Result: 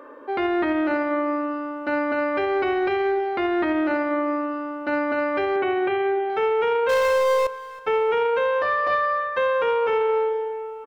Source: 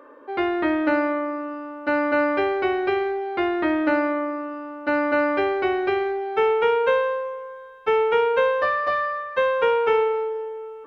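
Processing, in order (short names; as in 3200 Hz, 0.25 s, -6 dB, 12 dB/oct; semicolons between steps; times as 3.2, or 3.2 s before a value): 6.89–7.47 power-law curve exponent 0.5; limiter -19.5 dBFS, peak gain reduction 9.5 dB; 5.56–6.3 elliptic band-pass 100–3300 Hz; feedback echo 0.323 s, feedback 40%, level -19 dB; gain +4 dB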